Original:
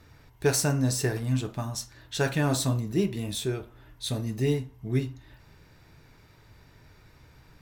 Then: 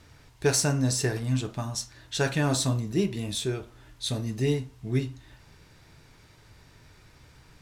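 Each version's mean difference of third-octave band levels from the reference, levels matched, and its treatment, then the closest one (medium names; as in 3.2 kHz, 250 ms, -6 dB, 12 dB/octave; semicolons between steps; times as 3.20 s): 1.5 dB: treble shelf 4.8 kHz +10 dB; added noise white -61 dBFS; distance through air 55 m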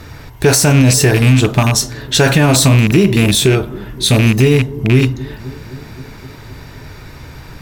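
4.5 dB: rattle on loud lows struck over -30 dBFS, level -27 dBFS; bucket-brigade echo 259 ms, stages 1024, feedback 74%, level -23 dB; loudness maximiser +22 dB; trim -1 dB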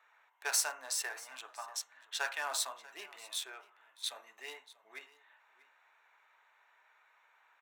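11.0 dB: local Wiener filter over 9 samples; high-pass 820 Hz 24 dB/octave; on a send: delay 638 ms -20 dB; on the sum: trim -2.5 dB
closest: first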